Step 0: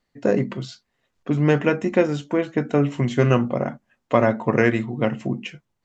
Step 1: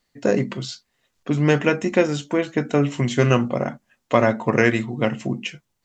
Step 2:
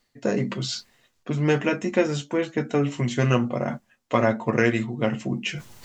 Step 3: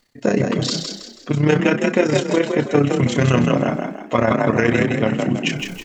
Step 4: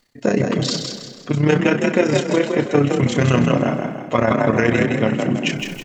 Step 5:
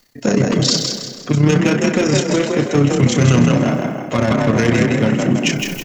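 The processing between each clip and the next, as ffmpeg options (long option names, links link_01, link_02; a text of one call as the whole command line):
ffmpeg -i in.wav -af "highshelf=frequency=3000:gain=10" out.wav
ffmpeg -i in.wav -af "flanger=delay=8.1:depth=1.5:regen=-40:speed=0.86:shape=triangular,areverse,acompressor=mode=upward:threshold=-22dB:ratio=2.5,areverse" out.wav
ffmpeg -i in.wav -filter_complex "[0:a]tremolo=f=32:d=0.667,asplit=2[link_01][link_02];[link_02]asplit=5[link_03][link_04][link_05][link_06][link_07];[link_03]adelay=162,afreqshift=33,volume=-5.5dB[link_08];[link_04]adelay=324,afreqshift=66,volume=-13.7dB[link_09];[link_05]adelay=486,afreqshift=99,volume=-21.9dB[link_10];[link_06]adelay=648,afreqshift=132,volume=-30dB[link_11];[link_07]adelay=810,afreqshift=165,volume=-38.2dB[link_12];[link_08][link_09][link_10][link_11][link_12]amix=inputs=5:normalize=0[link_13];[link_01][link_13]amix=inputs=2:normalize=0,alimiter=level_in=11.5dB:limit=-1dB:release=50:level=0:latency=1,volume=-2.5dB" out.wav
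ffmpeg -i in.wav -filter_complex "[0:a]asplit=2[link_01][link_02];[link_02]adelay=228,lowpass=frequency=3900:poles=1,volume=-14dB,asplit=2[link_03][link_04];[link_04]adelay=228,lowpass=frequency=3900:poles=1,volume=0.46,asplit=2[link_05][link_06];[link_06]adelay=228,lowpass=frequency=3900:poles=1,volume=0.46,asplit=2[link_07][link_08];[link_08]adelay=228,lowpass=frequency=3900:poles=1,volume=0.46[link_09];[link_01][link_03][link_05][link_07][link_09]amix=inputs=5:normalize=0" out.wav
ffmpeg -i in.wav -filter_complex "[0:a]acrossover=split=290|3000[link_01][link_02][link_03];[link_02]asoftclip=type=tanh:threshold=-22dB[link_04];[link_03]aexciter=amount=1.8:drive=3.9:freq=5000[link_05];[link_01][link_04][link_05]amix=inputs=3:normalize=0,volume=5dB" out.wav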